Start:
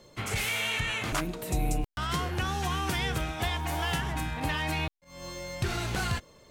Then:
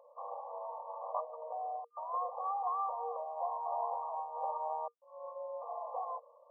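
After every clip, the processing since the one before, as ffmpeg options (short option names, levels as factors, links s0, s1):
-af "afftfilt=real='re*between(b*sr/4096,470,1200)':imag='im*between(b*sr/4096,470,1200)':win_size=4096:overlap=0.75"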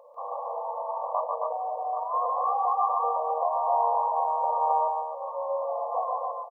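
-af "aecho=1:1:143|268|784:0.708|0.668|0.335,volume=2.51"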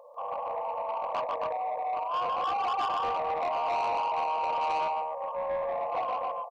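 -af "asoftclip=type=tanh:threshold=0.0473,volume=1.12"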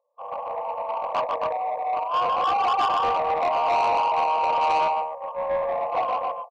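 -af "agate=range=0.0224:threshold=0.0398:ratio=3:detection=peak,volume=2.66"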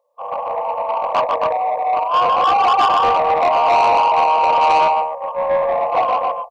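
-af "bandreject=f=50:t=h:w=6,bandreject=f=100:t=h:w=6,volume=2.51"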